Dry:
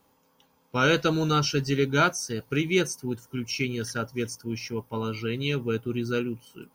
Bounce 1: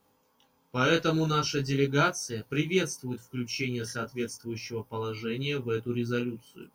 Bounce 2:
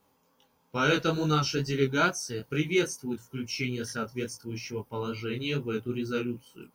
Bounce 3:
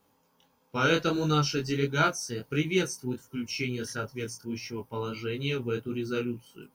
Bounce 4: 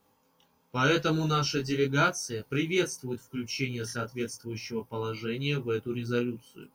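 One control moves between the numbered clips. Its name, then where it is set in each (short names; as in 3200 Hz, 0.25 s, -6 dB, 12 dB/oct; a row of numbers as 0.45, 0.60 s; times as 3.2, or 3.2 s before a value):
chorus, rate: 0.42, 2.3, 1.5, 0.89 Hz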